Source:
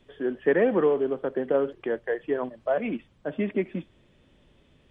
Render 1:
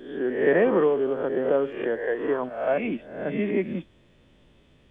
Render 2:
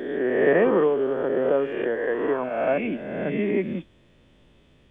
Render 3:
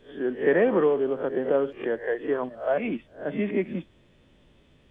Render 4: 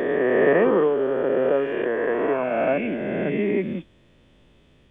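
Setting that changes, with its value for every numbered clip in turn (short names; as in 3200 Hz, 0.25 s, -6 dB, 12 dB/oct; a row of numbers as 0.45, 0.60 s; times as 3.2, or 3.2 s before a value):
spectral swells, rising 60 dB in: 0.68, 1.44, 0.32, 3.01 s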